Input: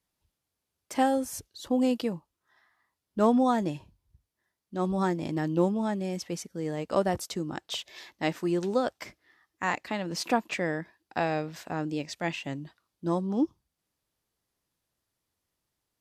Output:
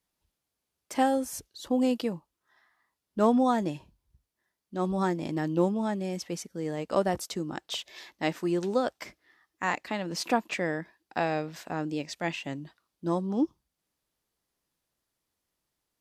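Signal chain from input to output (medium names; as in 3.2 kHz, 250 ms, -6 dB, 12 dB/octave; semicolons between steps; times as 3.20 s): peaking EQ 99 Hz -6 dB 0.77 oct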